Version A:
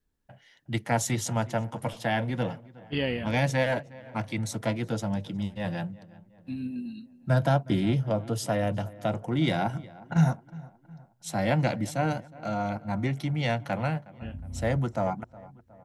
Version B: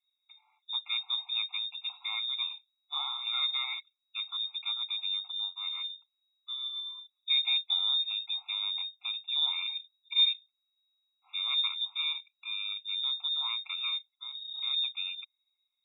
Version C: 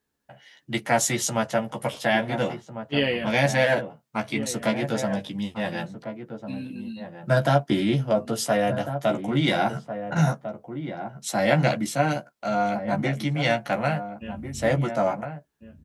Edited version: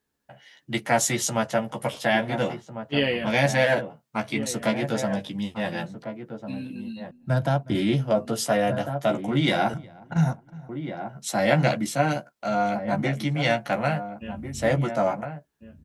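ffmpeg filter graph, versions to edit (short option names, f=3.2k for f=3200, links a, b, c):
-filter_complex "[0:a]asplit=2[a][b];[2:a]asplit=3[c][d][e];[c]atrim=end=7.112[f];[a]atrim=start=7.108:end=7.752[g];[d]atrim=start=7.748:end=9.742[h];[b]atrim=start=9.738:end=10.692[i];[e]atrim=start=10.688[j];[f][g]acrossfade=d=0.004:c1=hsin:c2=hsin[k];[k][h]acrossfade=d=0.004:c1=hsin:c2=hsin[l];[l][i]acrossfade=d=0.004:c1=hsin:c2=hsin[m];[m][j]acrossfade=d=0.004:c1=hsin:c2=hsin"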